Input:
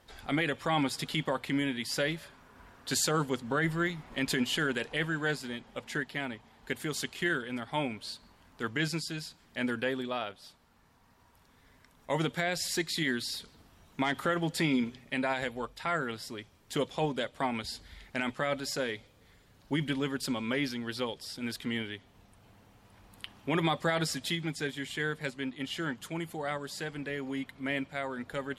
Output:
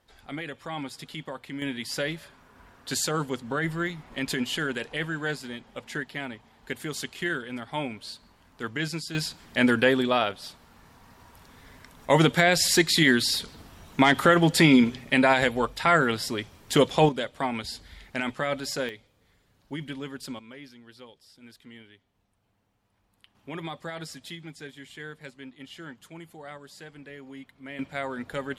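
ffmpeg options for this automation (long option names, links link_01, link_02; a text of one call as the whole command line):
ffmpeg -i in.wav -af "asetnsamples=nb_out_samples=441:pad=0,asendcmd='1.62 volume volume 1dB;9.15 volume volume 11dB;17.09 volume volume 3dB;18.89 volume volume -4.5dB;20.39 volume volume -14dB;23.35 volume volume -7.5dB;27.79 volume volume 3.5dB',volume=-6dB" out.wav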